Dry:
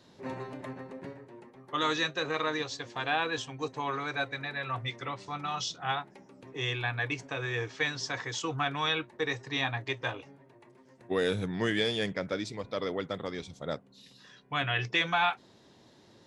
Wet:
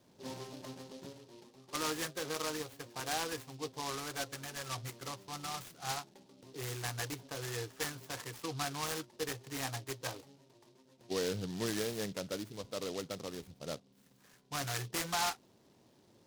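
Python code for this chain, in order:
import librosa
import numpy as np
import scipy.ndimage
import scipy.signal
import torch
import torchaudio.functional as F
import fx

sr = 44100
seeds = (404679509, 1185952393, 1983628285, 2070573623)

y = scipy.signal.sosfilt(scipy.signal.butter(2, 2300.0, 'lowpass', fs=sr, output='sos'), x)
y = fx.noise_mod_delay(y, sr, seeds[0], noise_hz=4000.0, depth_ms=0.11)
y = y * librosa.db_to_amplitude(-6.0)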